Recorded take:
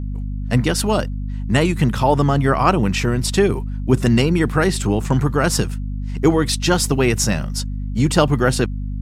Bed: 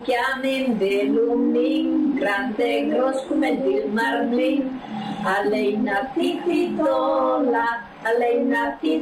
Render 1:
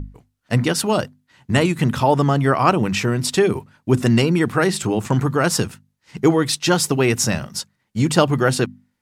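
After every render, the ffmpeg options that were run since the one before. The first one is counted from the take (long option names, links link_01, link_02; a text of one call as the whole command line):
ffmpeg -i in.wav -af "bandreject=frequency=50:width_type=h:width=6,bandreject=frequency=100:width_type=h:width=6,bandreject=frequency=150:width_type=h:width=6,bandreject=frequency=200:width_type=h:width=6,bandreject=frequency=250:width_type=h:width=6" out.wav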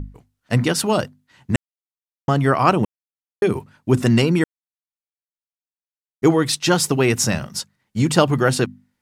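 ffmpeg -i in.wav -filter_complex "[0:a]asplit=7[link_01][link_02][link_03][link_04][link_05][link_06][link_07];[link_01]atrim=end=1.56,asetpts=PTS-STARTPTS,afade=type=out:start_time=1.556:duration=0.004:curve=hsin[link_08];[link_02]atrim=start=1.56:end=2.28,asetpts=PTS-STARTPTS,volume=0[link_09];[link_03]atrim=start=2.28:end=2.85,asetpts=PTS-STARTPTS,afade=type=in:duration=0.004:curve=hsin,afade=type=out:start_time=0.566:duration=0.004:curve=hsin[link_10];[link_04]atrim=start=2.85:end=3.42,asetpts=PTS-STARTPTS,volume=0[link_11];[link_05]atrim=start=3.42:end=4.44,asetpts=PTS-STARTPTS,afade=type=in:duration=0.004:curve=hsin,afade=type=out:start_time=1.016:duration=0.004:curve=hsin[link_12];[link_06]atrim=start=4.44:end=6.22,asetpts=PTS-STARTPTS,volume=0[link_13];[link_07]atrim=start=6.22,asetpts=PTS-STARTPTS,afade=type=in:duration=0.004:curve=hsin[link_14];[link_08][link_09][link_10][link_11][link_12][link_13][link_14]concat=n=7:v=0:a=1" out.wav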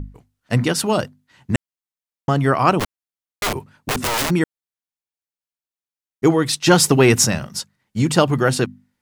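ffmpeg -i in.wav -filter_complex "[0:a]asplit=3[link_01][link_02][link_03];[link_01]afade=type=out:start_time=2.79:duration=0.02[link_04];[link_02]aeval=exprs='(mod(6.31*val(0)+1,2)-1)/6.31':channel_layout=same,afade=type=in:start_time=2.79:duration=0.02,afade=type=out:start_time=4.29:duration=0.02[link_05];[link_03]afade=type=in:start_time=4.29:duration=0.02[link_06];[link_04][link_05][link_06]amix=inputs=3:normalize=0,asplit=3[link_07][link_08][link_09];[link_07]afade=type=out:start_time=6.66:duration=0.02[link_10];[link_08]acontrast=30,afade=type=in:start_time=6.66:duration=0.02,afade=type=out:start_time=7.25:duration=0.02[link_11];[link_09]afade=type=in:start_time=7.25:duration=0.02[link_12];[link_10][link_11][link_12]amix=inputs=3:normalize=0" out.wav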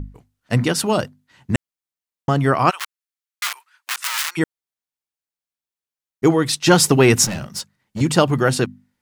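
ffmpeg -i in.wav -filter_complex "[0:a]asplit=3[link_01][link_02][link_03];[link_01]afade=type=out:start_time=2.69:duration=0.02[link_04];[link_02]highpass=frequency=1200:width=0.5412,highpass=frequency=1200:width=1.3066,afade=type=in:start_time=2.69:duration=0.02,afade=type=out:start_time=4.37:duration=0.02[link_05];[link_03]afade=type=in:start_time=4.37:duration=0.02[link_06];[link_04][link_05][link_06]amix=inputs=3:normalize=0,asettb=1/sr,asplit=3[link_07][link_08][link_09];[link_07]atrim=end=7.254[link_10];[link_08]atrim=start=7.25:end=8.01,asetpts=PTS-STARTPTS,afade=type=in:duration=0.004:curve=qsin,afade=type=out:start_time=0.756:duration=0.004:curve=qsin,volume=22.5dB,asoftclip=hard,volume=-22.5dB[link_11];[link_09]atrim=start=8.006[link_12];[link_10][link_11]acrossfade=duration=0.004:curve1=hsin:curve2=qsin[link_13];[link_13][link_12]acrossfade=duration=0.004:curve1=qsin:curve2=hsin" out.wav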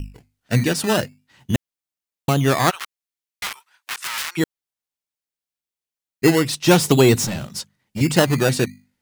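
ffmpeg -i in.wav -filter_complex "[0:a]acrossover=split=1200[link_01][link_02];[link_01]acrusher=samples=16:mix=1:aa=0.000001:lfo=1:lforange=9.6:lforate=0.38[link_03];[link_02]asoftclip=type=tanh:threshold=-20dB[link_04];[link_03][link_04]amix=inputs=2:normalize=0" out.wav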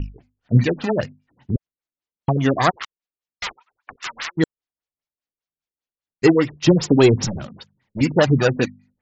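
ffmpeg -i in.wav -af "aphaser=in_gain=1:out_gain=1:delay=4.2:decay=0.4:speed=1.8:type=triangular,afftfilt=real='re*lt(b*sr/1024,450*pow(7800/450,0.5+0.5*sin(2*PI*5*pts/sr)))':imag='im*lt(b*sr/1024,450*pow(7800/450,0.5+0.5*sin(2*PI*5*pts/sr)))':win_size=1024:overlap=0.75" out.wav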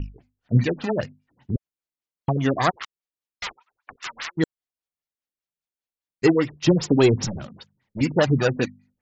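ffmpeg -i in.wav -af "volume=-3.5dB" out.wav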